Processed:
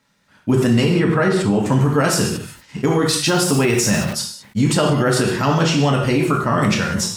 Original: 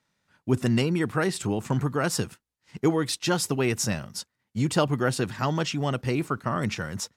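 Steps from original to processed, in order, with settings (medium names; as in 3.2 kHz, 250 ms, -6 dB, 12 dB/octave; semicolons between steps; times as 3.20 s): 0.94–1.66 s: low-pass 2.1 kHz 6 dB/octave; gated-style reverb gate 220 ms falling, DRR -0.5 dB; 3.28–4.13 s: small samples zeroed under -37.5 dBFS; peak limiter -16 dBFS, peak gain reduction 8 dB; decay stretcher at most 86 dB/s; trim +8.5 dB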